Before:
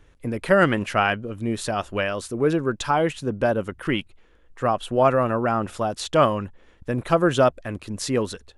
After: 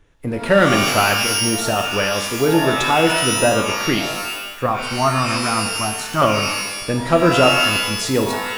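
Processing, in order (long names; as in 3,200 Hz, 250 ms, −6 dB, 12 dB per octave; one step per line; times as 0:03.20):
0:04.66–0:06.22: phaser with its sweep stopped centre 1,200 Hz, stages 4
leveller curve on the samples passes 1
reverb with rising layers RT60 1 s, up +12 semitones, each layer −2 dB, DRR 5 dB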